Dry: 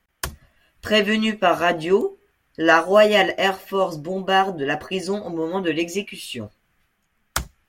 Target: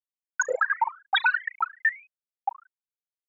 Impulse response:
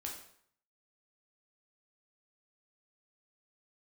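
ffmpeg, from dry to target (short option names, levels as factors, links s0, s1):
-filter_complex "[0:a]bandreject=f=60:t=h:w=6,bandreject=f=120:t=h:w=6,bandreject=f=180:t=h:w=6,bandreject=f=240:t=h:w=6,bandreject=f=300:t=h:w=6,bandreject=f=360:t=h:w=6,bandreject=f=420:t=h:w=6,afftfilt=real='re*gte(hypot(re,im),1.26)':imag='im*gte(hypot(re,im),1.26)':win_size=1024:overlap=0.75,highpass=f=260:p=1,equalizer=f=1100:t=o:w=0.58:g=11,acompressor=threshold=0.0355:ratio=6,asplit=6[s0][s1][s2][s3][s4][s5];[s1]adelay=83,afreqshift=62,volume=0.126[s6];[s2]adelay=166,afreqshift=124,volume=0.0733[s7];[s3]adelay=249,afreqshift=186,volume=0.0422[s8];[s4]adelay=332,afreqshift=248,volume=0.0245[s9];[s5]adelay=415,afreqshift=310,volume=0.0143[s10];[s0][s6][s7][s8][s9][s10]amix=inputs=6:normalize=0,asetrate=103194,aresample=44100,volume=2.66"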